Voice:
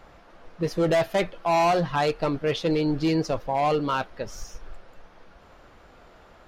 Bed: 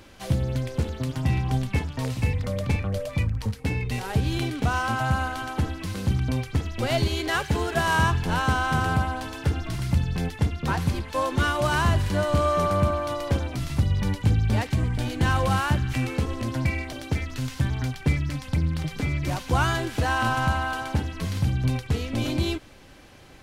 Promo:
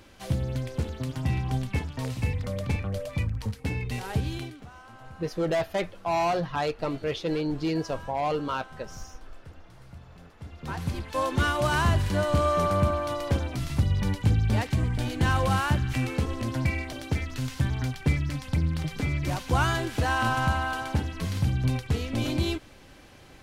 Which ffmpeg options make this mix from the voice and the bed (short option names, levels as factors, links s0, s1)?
-filter_complex "[0:a]adelay=4600,volume=0.596[s0];[1:a]volume=8.41,afade=t=out:st=4.16:d=0.5:silence=0.1,afade=t=in:st=10.39:d=0.85:silence=0.0794328[s1];[s0][s1]amix=inputs=2:normalize=0"